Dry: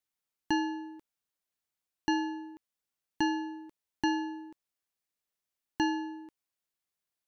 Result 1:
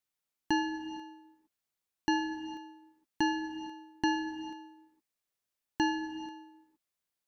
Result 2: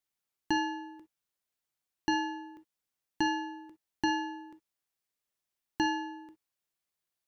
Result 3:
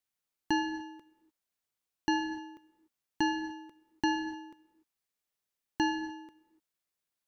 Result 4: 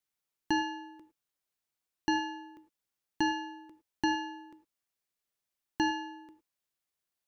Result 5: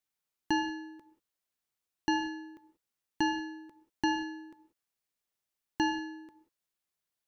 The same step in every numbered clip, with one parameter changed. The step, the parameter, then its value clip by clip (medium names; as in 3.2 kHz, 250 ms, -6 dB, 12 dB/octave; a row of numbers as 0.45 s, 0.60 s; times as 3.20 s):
gated-style reverb, gate: 490 ms, 80 ms, 320 ms, 130 ms, 210 ms